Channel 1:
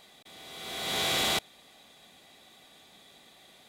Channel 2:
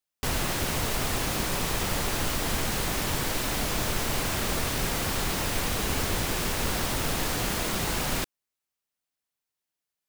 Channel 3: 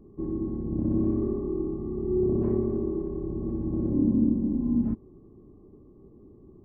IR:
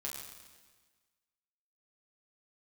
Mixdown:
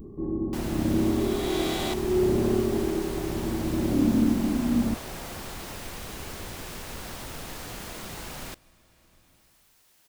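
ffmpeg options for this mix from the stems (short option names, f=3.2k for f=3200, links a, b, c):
-filter_complex "[0:a]adelay=550,volume=-7dB[a];[1:a]adelay=300,volume=-11.5dB,asplit=2[b][c];[c]volume=-19dB[d];[2:a]volume=0dB[e];[3:a]atrim=start_sample=2205[f];[d][f]afir=irnorm=-1:irlink=0[g];[a][b][e][g]amix=inputs=4:normalize=0,adynamicequalizer=threshold=0.00631:dfrequency=690:dqfactor=1.2:tfrequency=690:tqfactor=1.2:attack=5:release=100:ratio=0.375:range=3.5:mode=boostabove:tftype=bell,acompressor=mode=upward:threshold=-34dB:ratio=2.5"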